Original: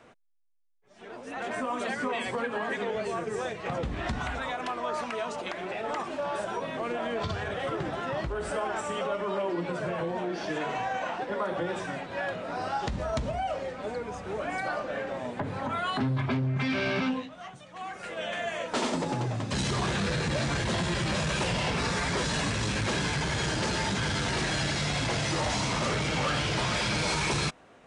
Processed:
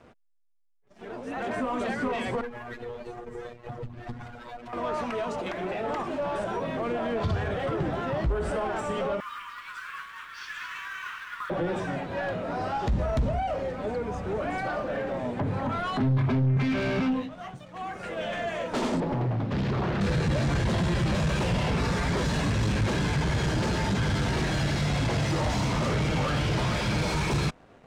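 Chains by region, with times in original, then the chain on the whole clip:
2.41–4.73 s: companding laws mixed up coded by A + robot voice 120 Hz + valve stage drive 32 dB, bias 0.8
9.20–11.50 s: steep high-pass 1.1 kHz 72 dB/octave + short-mantissa float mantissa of 2-bit + delay 210 ms -7.5 dB
19.00–20.01 s: high-pass 130 Hz 6 dB/octave + distance through air 260 m + loudspeaker Doppler distortion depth 0.48 ms
whole clip: waveshaping leveller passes 2; tilt EQ -2 dB/octave; trim -5 dB

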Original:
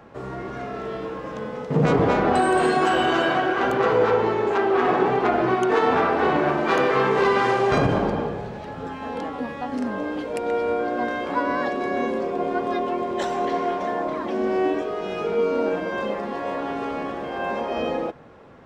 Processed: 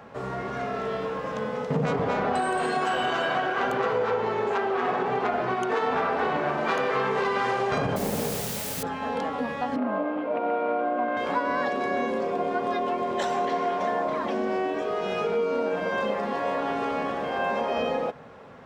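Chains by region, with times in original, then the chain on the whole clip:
7.96–8.83 s: median filter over 41 samples + low-pass 1.7 kHz 6 dB/octave + word length cut 6-bit, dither triangular
9.76–11.17 s: CVSD coder 32 kbps + cabinet simulation 190–2400 Hz, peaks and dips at 310 Hz +8 dB, 440 Hz -7 dB, 640 Hz +8 dB, 1.2 kHz +4 dB, 1.8 kHz -6 dB
whole clip: bass shelf 76 Hz -11.5 dB; compression, threshold -24 dBFS; peaking EQ 330 Hz -12.5 dB 0.24 oct; trim +2.5 dB

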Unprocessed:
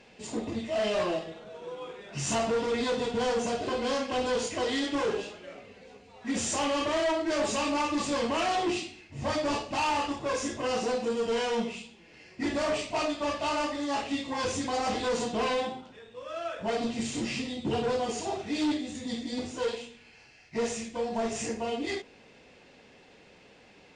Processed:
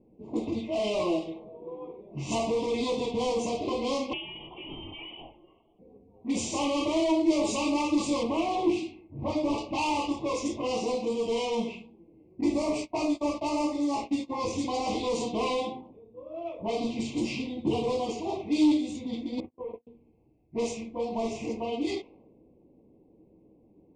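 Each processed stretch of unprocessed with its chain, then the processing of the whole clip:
4.13–5.79 s: frequency inversion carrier 3.4 kHz + compression 12:1, threshold -30 dBFS
8.23–9.58 s: treble shelf 3 kHz -9.5 dB + loudspeaker Doppler distortion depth 0.14 ms
12.41–14.53 s: peaking EQ 3.2 kHz -8 dB 0.66 oct + gate -38 dBFS, range -21 dB + doubling 17 ms -11 dB
19.40–19.87 s: gate -36 dBFS, range -40 dB + low-pass 2.3 kHz 24 dB/octave + compression 8:1, threshold -33 dBFS
whole clip: Chebyshev band-stop 1.1–2.2 kHz, order 3; peaking EQ 320 Hz +10.5 dB 0.23 oct; level-controlled noise filter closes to 320 Hz, open at -24.5 dBFS

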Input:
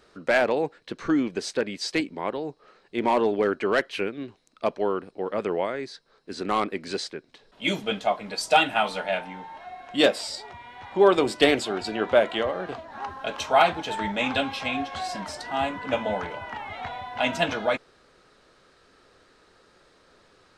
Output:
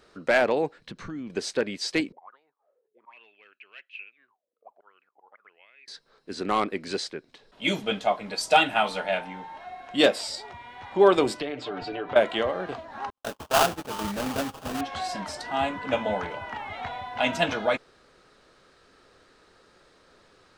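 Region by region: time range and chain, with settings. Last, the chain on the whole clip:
0.79–1.30 s: resonant low shelf 260 Hz +7.5 dB, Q 1.5 + compression 3:1, threshold -38 dBFS
2.12–5.88 s: slow attack 161 ms + auto-wah 380–2600 Hz, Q 18, up, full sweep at -26 dBFS
11.40–12.16 s: comb 6.8 ms, depth 91% + compression, threshold -28 dBFS + distance through air 180 m
13.10–14.81 s: gate -34 dBFS, range -52 dB + tape spacing loss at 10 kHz 36 dB + sample-rate reducer 2.1 kHz, jitter 20%
whole clip: none

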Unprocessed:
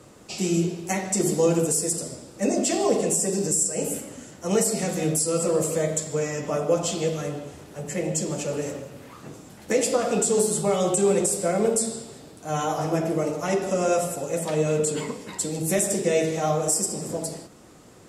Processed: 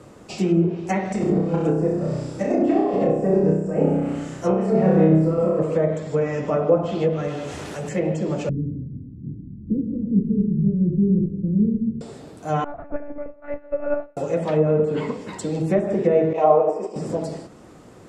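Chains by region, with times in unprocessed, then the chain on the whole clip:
1.11–5.59 s: compressor with a negative ratio -25 dBFS, ratio -0.5 + flutter echo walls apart 5.4 m, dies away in 0.77 s
7.28–7.89 s: tilt shelf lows -5.5 dB, about 1.1 kHz + level flattener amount 70%
8.49–12.01 s: inverse Chebyshev low-pass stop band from 690 Hz, stop band 50 dB + tilt EQ -2.5 dB/octave
12.64–14.17 s: static phaser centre 650 Hz, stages 8 + monotone LPC vocoder at 8 kHz 290 Hz + upward expansion 2.5:1, over -38 dBFS
16.33–16.96 s: expander -24 dBFS + cabinet simulation 290–9300 Hz, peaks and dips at 430 Hz +8 dB, 660 Hz +6 dB, 970 Hz +10 dB, 1.5 kHz -7 dB, 2.6 kHz +8 dB
whole clip: low-pass that closes with the level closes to 1.3 kHz, closed at -19 dBFS; treble shelf 3 kHz -10 dB; trim +5 dB

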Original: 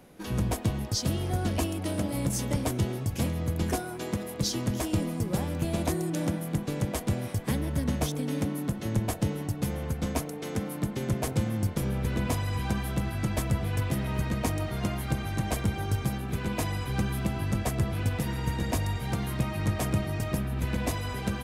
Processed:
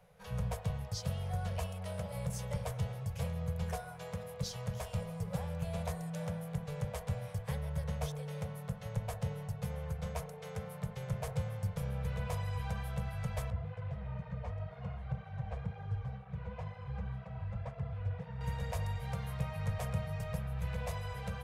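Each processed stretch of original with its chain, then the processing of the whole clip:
13.50–18.41 s: tape spacing loss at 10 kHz 28 dB + cancelling through-zero flanger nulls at 2 Hz, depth 7.8 ms
whole clip: elliptic band-stop 180–460 Hz, stop band 40 dB; treble shelf 2.5 kHz -8.5 dB; de-hum 53.91 Hz, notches 37; trim -5.5 dB

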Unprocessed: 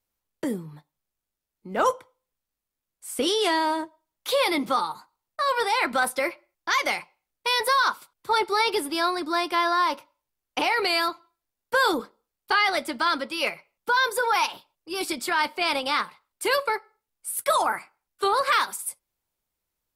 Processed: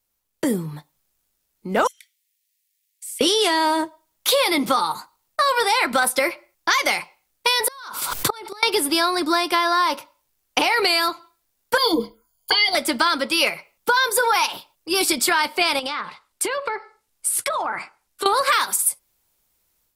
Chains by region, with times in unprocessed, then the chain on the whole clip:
1.87–3.21 s: steep high-pass 1.8 kHz 72 dB/octave + compression 2.5:1, threshold -52 dBFS
7.60–8.63 s: inverted gate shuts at -17 dBFS, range -29 dB + swell ahead of each attack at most 41 dB/s
11.77–12.75 s: rippled EQ curve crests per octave 1.8, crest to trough 16 dB + touch-sensitive phaser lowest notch 240 Hz, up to 1.5 kHz, full sweep at -23 dBFS
15.79–18.26 s: low-pass that closes with the level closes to 2.5 kHz, closed at -20 dBFS + compression 8:1, threshold -32 dBFS
whole clip: level rider gain up to 8 dB; treble shelf 3.9 kHz +6.5 dB; compression, threshold -18 dBFS; trim +2.5 dB

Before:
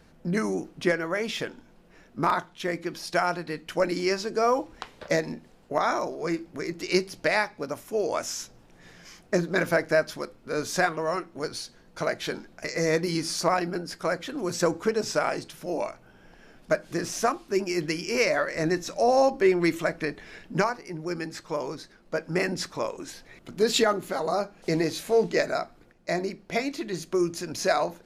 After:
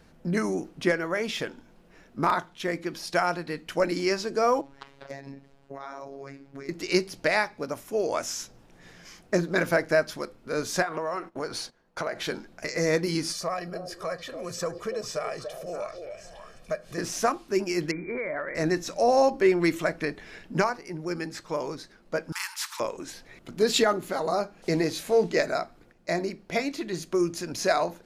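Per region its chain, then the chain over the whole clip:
4.61–6.69 s: low-pass 4 kHz 6 dB/octave + compression 4:1, threshold -35 dBFS + robot voice 138 Hz
10.82–12.23 s: gate -49 dBFS, range -15 dB + peaking EQ 920 Hz +8 dB 2.7 oct + compression 5:1, threshold -27 dBFS
13.32–16.98 s: comb 1.7 ms, depth 66% + repeats whose band climbs or falls 287 ms, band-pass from 440 Hz, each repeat 1.4 oct, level -7 dB + compression 1.5:1, threshold -42 dBFS
17.91–18.55 s: brick-wall FIR low-pass 2.4 kHz + compression 5:1, threshold -28 dBFS
22.32–22.80 s: brick-wall FIR high-pass 840 Hz + spectrum-flattening compressor 2:1
whole clip: none

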